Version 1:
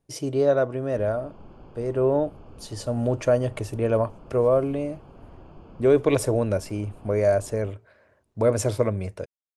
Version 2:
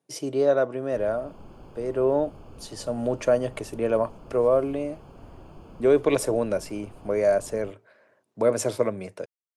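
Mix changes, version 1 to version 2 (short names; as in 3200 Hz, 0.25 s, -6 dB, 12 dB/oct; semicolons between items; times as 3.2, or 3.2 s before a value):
speech: add Bessel high-pass 210 Hz, order 8; background: remove air absorption 150 m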